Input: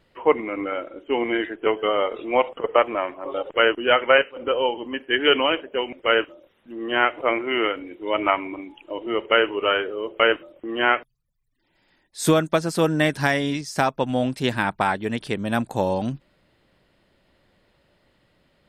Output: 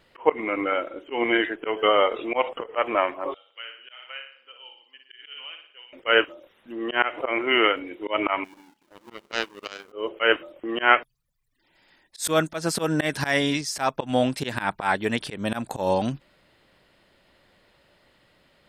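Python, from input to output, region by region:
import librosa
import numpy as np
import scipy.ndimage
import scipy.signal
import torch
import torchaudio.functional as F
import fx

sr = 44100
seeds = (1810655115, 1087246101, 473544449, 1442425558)

y = fx.chain(x, sr, fx.bandpass_q(hz=4500.0, q=8.7),
    fx.room_flutter(wall_m=9.9, rt60_s=0.56), at=(3.34, 5.93))
y = fx.chain(y, sr, fx.zero_step(step_db=-24.0),
    fx.peak_eq(hz=210.0, db=13.5, octaves=0.89),
    fx.power_curve(exponent=3.0), at=(8.44, 9.92))
y = fx.low_shelf(y, sr, hz=450.0, db=-7.0)
y = fx.auto_swell(y, sr, attack_ms=136.0)
y = y * 10.0 ** (5.0 / 20.0)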